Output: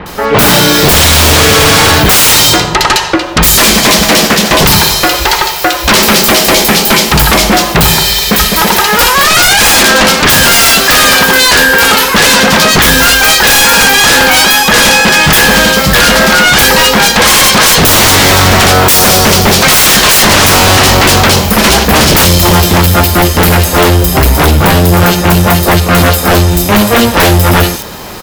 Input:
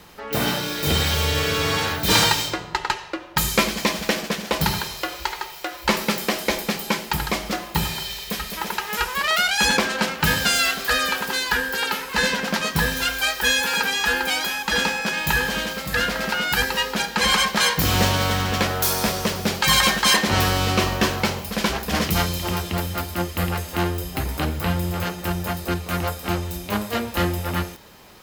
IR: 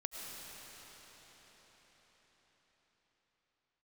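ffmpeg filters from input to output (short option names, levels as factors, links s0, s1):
-filter_complex "[0:a]acrossover=split=2600[s0][s1];[s1]adelay=60[s2];[s0][s2]amix=inputs=2:normalize=0,aeval=exprs='0.562*sin(PI/2*7.08*val(0)/0.562)':c=same,volume=1.41"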